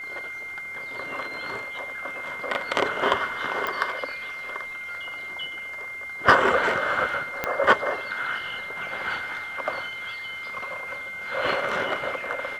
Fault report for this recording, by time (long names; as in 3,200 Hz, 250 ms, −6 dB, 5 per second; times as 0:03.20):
whistle 2,100 Hz −33 dBFS
0:03.67: click −14 dBFS
0:07.44: click −10 dBFS